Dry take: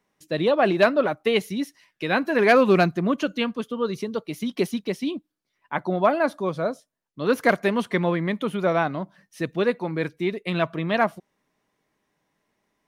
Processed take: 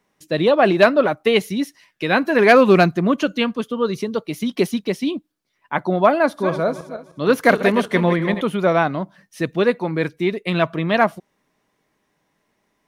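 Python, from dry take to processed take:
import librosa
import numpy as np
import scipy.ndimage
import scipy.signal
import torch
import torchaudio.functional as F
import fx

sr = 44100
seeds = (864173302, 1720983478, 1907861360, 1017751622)

y = fx.reverse_delay_fb(x, sr, ms=153, feedback_pct=43, wet_db=-9.5, at=(6.2, 8.41))
y = y * librosa.db_to_amplitude(5.0)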